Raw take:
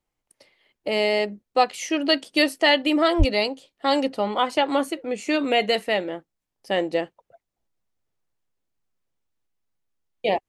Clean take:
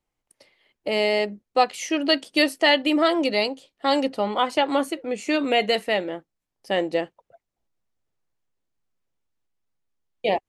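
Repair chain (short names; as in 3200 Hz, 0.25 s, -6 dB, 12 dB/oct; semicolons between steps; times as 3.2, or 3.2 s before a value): 3.18–3.3 HPF 140 Hz 24 dB/oct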